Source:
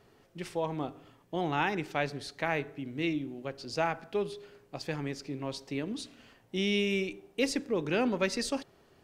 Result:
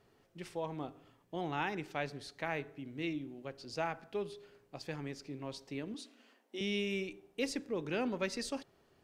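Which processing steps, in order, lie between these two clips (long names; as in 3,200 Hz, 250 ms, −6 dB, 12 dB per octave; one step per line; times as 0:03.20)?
0:05.94–0:06.61: elliptic high-pass filter 230 Hz
level −6.5 dB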